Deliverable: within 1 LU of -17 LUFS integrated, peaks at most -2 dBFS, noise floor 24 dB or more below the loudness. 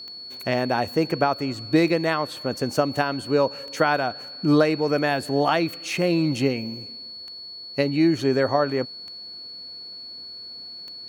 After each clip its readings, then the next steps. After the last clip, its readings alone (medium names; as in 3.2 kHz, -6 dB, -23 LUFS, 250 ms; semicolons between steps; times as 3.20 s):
clicks found 7; steady tone 4.4 kHz; tone level -36 dBFS; loudness -23.0 LUFS; peak level -6.0 dBFS; loudness target -17.0 LUFS
-> de-click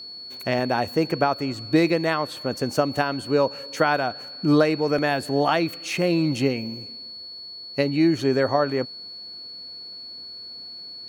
clicks found 0; steady tone 4.4 kHz; tone level -36 dBFS
-> band-stop 4.4 kHz, Q 30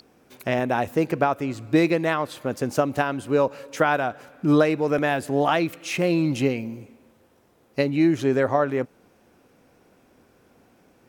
steady tone not found; loudness -23.5 LUFS; peak level -5.5 dBFS; loudness target -17.0 LUFS
-> trim +6.5 dB; peak limiter -2 dBFS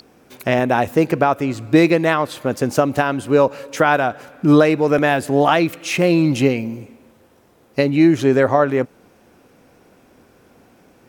loudness -17.0 LUFS; peak level -2.0 dBFS; noise floor -53 dBFS